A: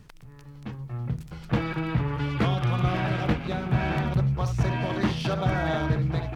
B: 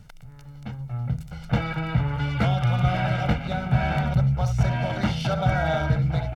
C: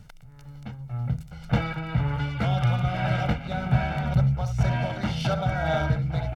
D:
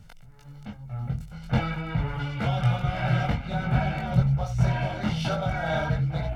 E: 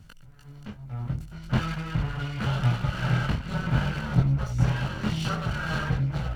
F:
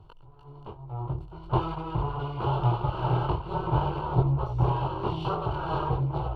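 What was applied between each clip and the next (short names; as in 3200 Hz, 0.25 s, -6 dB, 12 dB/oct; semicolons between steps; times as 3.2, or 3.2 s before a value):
comb 1.4 ms, depth 69%
tremolo 1.9 Hz, depth 41%
chorus voices 4, 1 Hz, delay 21 ms, depth 3 ms; gain +2.5 dB
minimum comb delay 0.69 ms
EQ curve 140 Hz 0 dB, 240 Hz -16 dB, 350 Hz +14 dB, 560 Hz +3 dB, 1000 Hz +14 dB, 1800 Hz -20 dB, 2900 Hz -4 dB, 4200 Hz -8 dB, 6000 Hz -22 dB; gain -1.5 dB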